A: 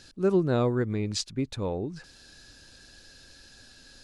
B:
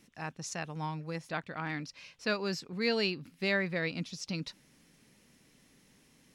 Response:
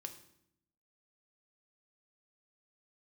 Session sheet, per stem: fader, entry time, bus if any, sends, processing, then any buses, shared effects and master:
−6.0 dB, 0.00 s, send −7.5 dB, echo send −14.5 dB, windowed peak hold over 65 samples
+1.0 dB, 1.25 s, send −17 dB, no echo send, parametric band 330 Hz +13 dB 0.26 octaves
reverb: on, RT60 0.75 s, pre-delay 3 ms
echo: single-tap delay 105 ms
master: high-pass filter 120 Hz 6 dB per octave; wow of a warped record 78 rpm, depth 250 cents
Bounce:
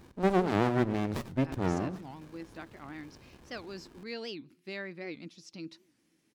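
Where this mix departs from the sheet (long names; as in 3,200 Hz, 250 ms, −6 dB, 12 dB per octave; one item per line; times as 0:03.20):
stem A −6.0 dB → +3.0 dB
stem B +1.0 dB → −11.0 dB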